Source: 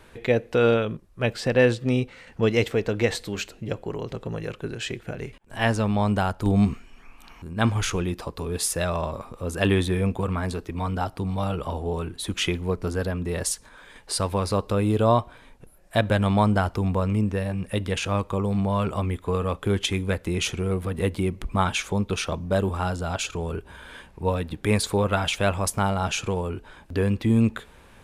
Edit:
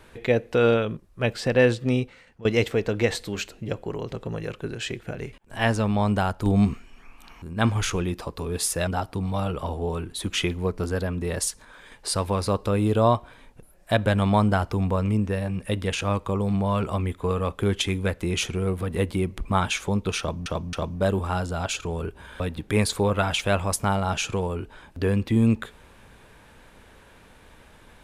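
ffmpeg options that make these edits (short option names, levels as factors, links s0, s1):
-filter_complex "[0:a]asplit=6[s0][s1][s2][s3][s4][s5];[s0]atrim=end=2.45,asetpts=PTS-STARTPTS,afade=t=out:st=1.94:d=0.51:silence=0.0707946[s6];[s1]atrim=start=2.45:end=8.872,asetpts=PTS-STARTPTS,afade=t=in:d=0.004:c=hsin:silence=0.0707946[s7];[s2]atrim=start=10.908:end=22.502[s8];[s3]atrim=start=22.228:end=22.502[s9];[s4]atrim=start=22.228:end=23.902[s10];[s5]atrim=start=24.338[s11];[s6][s7]concat=n=2:v=0:a=1[s12];[s12][s8]acrossfade=d=0.004:c1=hsin:c2=hsin[s13];[s13][s9]acrossfade=d=0.004:c1=hsin:c2=hsin[s14];[s14][s10]acrossfade=d=0.004:c1=hsin:c2=hsin[s15];[s15][s11]acrossfade=d=0.004:c1=hsin:c2=hsin"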